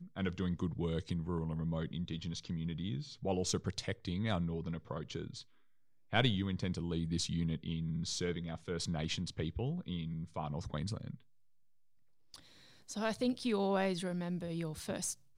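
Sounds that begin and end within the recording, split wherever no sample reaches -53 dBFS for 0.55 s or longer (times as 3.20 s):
6.12–11.20 s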